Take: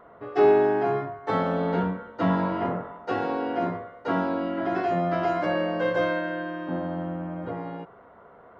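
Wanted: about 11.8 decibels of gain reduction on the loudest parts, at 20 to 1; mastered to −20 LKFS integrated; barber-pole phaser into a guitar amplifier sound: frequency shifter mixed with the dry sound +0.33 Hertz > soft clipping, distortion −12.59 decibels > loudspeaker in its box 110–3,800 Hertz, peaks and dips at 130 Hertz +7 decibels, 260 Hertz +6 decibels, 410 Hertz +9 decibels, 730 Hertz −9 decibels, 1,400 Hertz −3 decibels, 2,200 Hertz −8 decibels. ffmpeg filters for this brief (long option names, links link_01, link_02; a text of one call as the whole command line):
ffmpeg -i in.wav -filter_complex "[0:a]acompressor=threshold=-25dB:ratio=20,asplit=2[link_01][link_02];[link_02]afreqshift=0.33[link_03];[link_01][link_03]amix=inputs=2:normalize=1,asoftclip=threshold=-31dB,highpass=110,equalizer=frequency=130:width_type=q:width=4:gain=7,equalizer=frequency=260:width_type=q:width=4:gain=6,equalizer=frequency=410:width_type=q:width=4:gain=9,equalizer=frequency=730:width_type=q:width=4:gain=-9,equalizer=frequency=1400:width_type=q:width=4:gain=-3,equalizer=frequency=2200:width_type=q:width=4:gain=-8,lowpass=frequency=3800:width=0.5412,lowpass=frequency=3800:width=1.3066,volume=14.5dB" out.wav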